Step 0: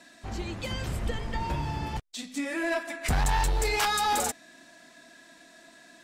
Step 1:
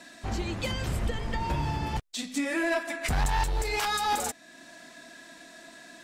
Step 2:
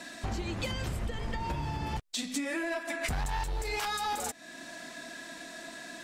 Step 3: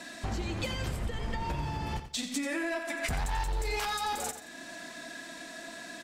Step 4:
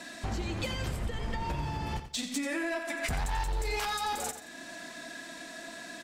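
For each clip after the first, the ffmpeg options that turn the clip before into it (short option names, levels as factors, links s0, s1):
-af "alimiter=level_in=1.06:limit=0.0631:level=0:latency=1:release=432,volume=0.944,volume=1.68"
-af "acompressor=threshold=0.0178:ratio=10,volume=1.68"
-af "aecho=1:1:88|176|264:0.299|0.0896|0.0269"
-af "volume=16.8,asoftclip=hard,volume=0.0596"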